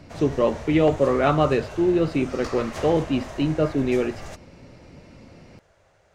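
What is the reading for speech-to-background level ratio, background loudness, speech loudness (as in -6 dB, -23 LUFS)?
14.5 dB, -37.0 LUFS, -22.5 LUFS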